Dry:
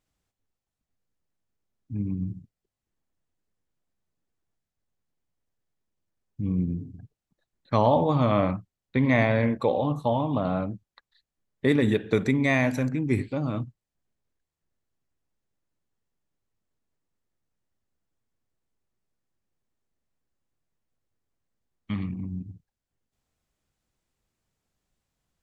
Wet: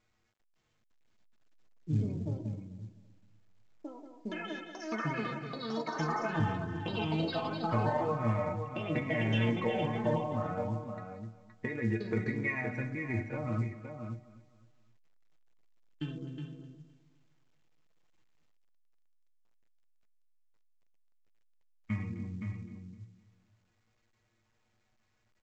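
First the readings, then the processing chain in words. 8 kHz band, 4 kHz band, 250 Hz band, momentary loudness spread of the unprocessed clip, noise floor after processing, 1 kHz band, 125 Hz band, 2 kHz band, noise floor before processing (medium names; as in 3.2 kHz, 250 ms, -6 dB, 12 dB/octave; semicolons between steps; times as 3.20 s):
no reading, -1.5 dB, -8.0 dB, 14 LU, -75 dBFS, -5.5 dB, -5.0 dB, -5.5 dB, under -85 dBFS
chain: resonant high shelf 2.8 kHz -8 dB, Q 3; band-stop 690 Hz, Q 22; peak limiter -12 dBFS, peak gain reduction 4.5 dB; compression 6:1, threshold -28 dBFS, peak gain reduction 10 dB; inharmonic resonator 110 Hz, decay 0.24 s, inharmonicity 0.008; delay 519 ms -7.5 dB; ever faster or slower copies 528 ms, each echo +6 st, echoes 3; distance through air 110 m; feedback delay 257 ms, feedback 38%, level -16 dB; trim +7.5 dB; µ-law 128 kbps 16 kHz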